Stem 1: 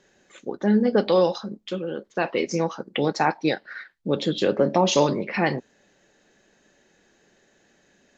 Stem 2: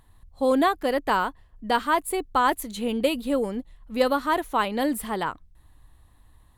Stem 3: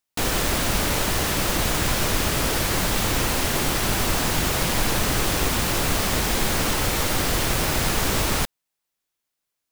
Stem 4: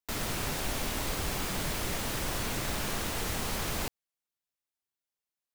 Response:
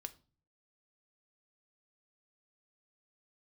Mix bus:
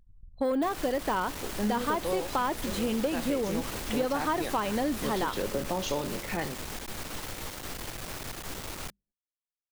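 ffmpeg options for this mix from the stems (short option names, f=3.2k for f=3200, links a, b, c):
-filter_complex "[0:a]adelay=950,volume=-10dB[a];[1:a]deesser=0.85,asoftclip=type=tanh:threshold=-15.5dB,volume=-1.5dB,asplit=2[b][c];[c]volume=-4dB[d];[2:a]alimiter=limit=-16dB:level=0:latency=1:release=272,aeval=exprs='(tanh(25.1*val(0)+0.7)-tanh(0.7))/25.1':c=same,bandreject=f=50:t=h:w=6,bandreject=f=100:t=h:w=6,bandreject=f=150:t=h:w=6,bandreject=f=200:t=h:w=6,adelay=450,volume=-6dB[e];[3:a]alimiter=level_in=5.5dB:limit=-24dB:level=0:latency=1,volume=-5.5dB,adelay=1600,volume=-1.5dB[f];[4:a]atrim=start_sample=2205[g];[d][g]afir=irnorm=-1:irlink=0[h];[a][b][e][f][h]amix=inputs=5:normalize=0,anlmdn=0.0251,acompressor=threshold=-25dB:ratio=6"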